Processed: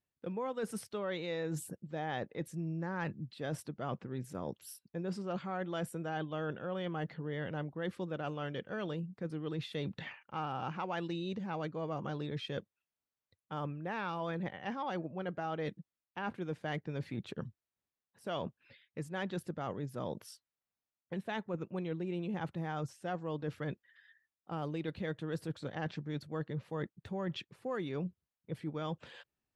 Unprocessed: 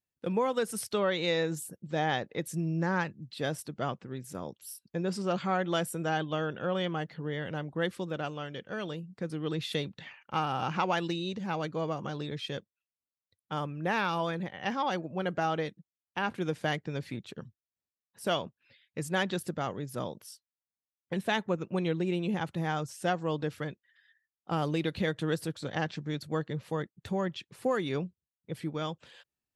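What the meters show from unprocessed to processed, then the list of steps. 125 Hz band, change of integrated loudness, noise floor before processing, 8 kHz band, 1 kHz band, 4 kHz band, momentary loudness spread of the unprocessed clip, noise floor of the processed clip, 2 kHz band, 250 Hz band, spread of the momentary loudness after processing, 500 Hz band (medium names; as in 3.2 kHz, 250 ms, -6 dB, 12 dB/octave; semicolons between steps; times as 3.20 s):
-4.5 dB, -6.5 dB, under -85 dBFS, -10.0 dB, -7.5 dB, -10.0 dB, 10 LU, under -85 dBFS, -8.5 dB, -5.5 dB, 5 LU, -6.5 dB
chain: treble shelf 3.8 kHz -11.5 dB; reverse; compression 6:1, threshold -40 dBFS, peak gain reduction 15 dB; reverse; trim +4.5 dB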